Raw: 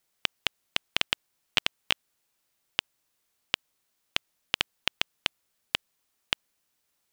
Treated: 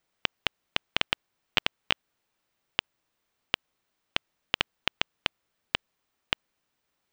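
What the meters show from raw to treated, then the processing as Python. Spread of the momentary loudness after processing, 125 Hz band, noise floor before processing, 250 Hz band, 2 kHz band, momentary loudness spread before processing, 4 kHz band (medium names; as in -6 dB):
5 LU, +3.0 dB, -77 dBFS, +3.0 dB, +0.5 dB, 5 LU, -1.0 dB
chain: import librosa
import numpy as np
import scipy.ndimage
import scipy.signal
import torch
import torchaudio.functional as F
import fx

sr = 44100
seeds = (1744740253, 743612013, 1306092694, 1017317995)

y = fx.peak_eq(x, sr, hz=14000.0, db=-14.5, octaves=1.8)
y = F.gain(torch.from_numpy(y), 3.0).numpy()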